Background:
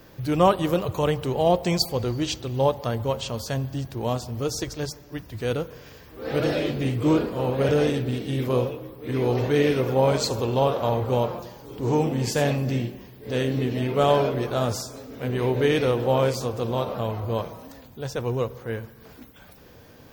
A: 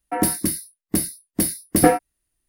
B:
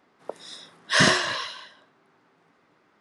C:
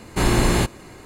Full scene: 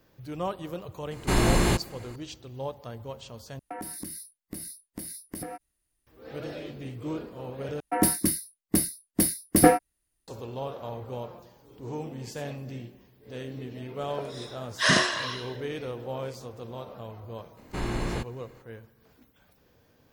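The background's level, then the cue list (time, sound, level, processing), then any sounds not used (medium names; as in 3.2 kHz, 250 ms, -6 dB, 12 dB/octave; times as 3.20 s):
background -13.5 dB
1.11 s: add C -4 dB
3.59 s: replace with A -2.5 dB + compression 12:1, threshold -31 dBFS
7.80 s: replace with A -2.5 dB
13.89 s: add B -3 dB
17.57 s: add C -12 dB + treble shelf 6.8 kHz -12 dB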